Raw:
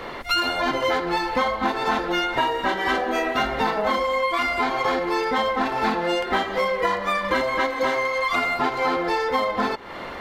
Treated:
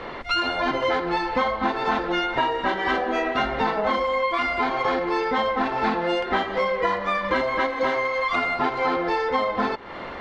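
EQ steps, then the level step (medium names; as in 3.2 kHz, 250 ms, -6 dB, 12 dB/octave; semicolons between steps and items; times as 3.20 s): distance through air 120 m; 0.0 dB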